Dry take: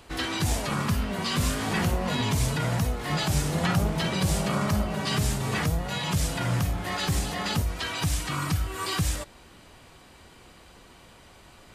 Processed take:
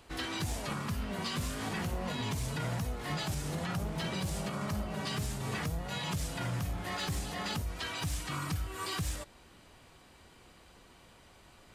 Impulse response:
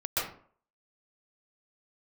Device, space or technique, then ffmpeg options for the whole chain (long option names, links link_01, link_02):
limiter into clipper: -af "alimiter=limit=-19dB:level=0:latency=1:release=203,asoftclip=type=hard:threshold=-21.5dB,volume=-6.5dB"